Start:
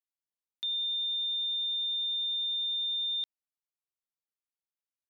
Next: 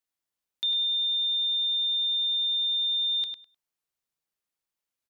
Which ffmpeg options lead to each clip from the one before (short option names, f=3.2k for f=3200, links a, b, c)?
-filter_complex "[0:a]asplit=2[a][b];[b]adelay=102,lowpass=f=3.5k:p=1,volume=-5.5dB,asplit=2[c][d];[d]adelay=102,lowpass=f=3.5k:p=1,volume=0.21,asplit=2[e][f];[f]adelay=102,lowpass=f=3.5k:p=1,volume=0.21[g];[a][c][e][g]amix=inputs=4:normalize=0,volume=6dB"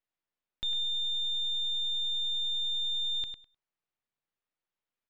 -af "aeval=exprs='if(lt(val(0),0),0.447*val(0),val(0))':c=same,lowpass=3k,volume=2dB"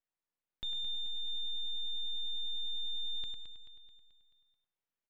-filter_complex "[0:a]highshelf=f=4k:g=-7,asplit=2[a][b];[b]aecho=0:1:217|434|651|868|1085|1302:0.355|0.181|0.0923|0.0471|0.024|0.0122[c];[a][c]amix=inputs=2:normalize=0,volume=-3.5dB"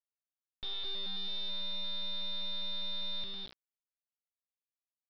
-af "bandreject=f=60:t=h:w=6,bandreject=f=120:t=h:w=6,bandreject=f=180:t=h:w=6,bandreject=f=240:t=h:w=6,bandreject=f=300:t=h:w=6,aresample=11025,acrusher=bits=4:dc=4:mix=0:aa=0.000001,aresample=44100,volume=-1.5dB"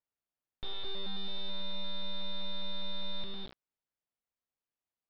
-af "lowpass=f=1.3k:p=1,volume=6dB"